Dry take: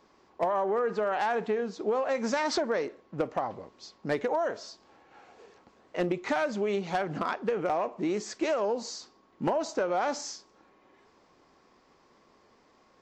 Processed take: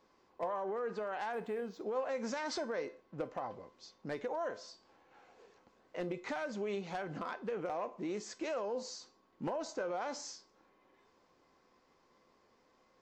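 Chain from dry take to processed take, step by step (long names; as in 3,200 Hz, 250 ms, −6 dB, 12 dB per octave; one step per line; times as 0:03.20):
brickwall limiter −22.5 dBFS, peak gain reduction 4 dB
tuned comb filter 510 Hz, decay 0.3 s, harmonics all, mix 70%
0:01.33–0:01.86: linearly interpolated sample-rate reduction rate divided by 4×
level +2 dB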